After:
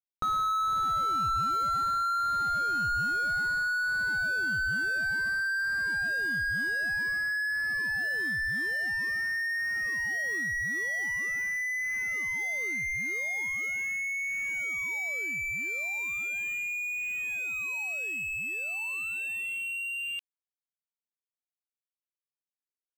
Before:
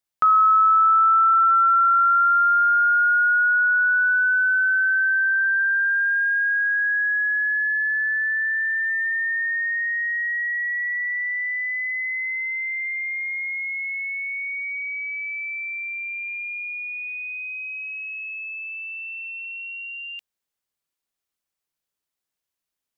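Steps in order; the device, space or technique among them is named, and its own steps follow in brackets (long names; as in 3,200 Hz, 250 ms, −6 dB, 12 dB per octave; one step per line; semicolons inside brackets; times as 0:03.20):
early transistor amplifier (dead-zone distortion −53.5 dBFS; slew-rate limiting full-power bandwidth 26 Hz)
level +7 dB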